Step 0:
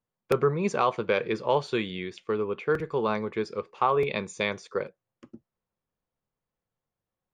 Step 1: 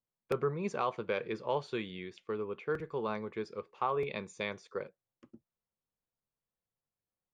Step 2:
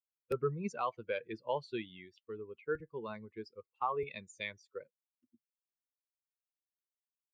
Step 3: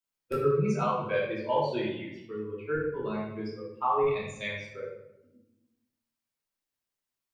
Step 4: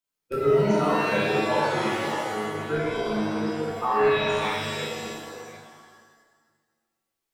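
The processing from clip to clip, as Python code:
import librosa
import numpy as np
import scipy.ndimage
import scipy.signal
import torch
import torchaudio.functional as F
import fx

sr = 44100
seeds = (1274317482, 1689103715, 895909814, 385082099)

y1 = fx.high_shelf(x, sr, hz=6500.0, db=-4.5)
y1 = y1 * 10.0 ** (-8.5 / 20.0)
y2 = fx.bin_expand(y1, sr, power=2.0)
y2 = y2 * 10.0 ** (1.0 / 20.0)
y3 = fx.room_shoebox(y2, sr, seeds[0], volume_m3=300.0, walls='mixed', distance_m=2.8)
y4 = fx.reverse_delay(y3, sr, ms=464, wet_db=-7)
y4 = fx.rev_shimmer(y4, sr, seeds[1], rt60_s=1.2, semitones=7, shimmer_db=-2, drr_db=1.0)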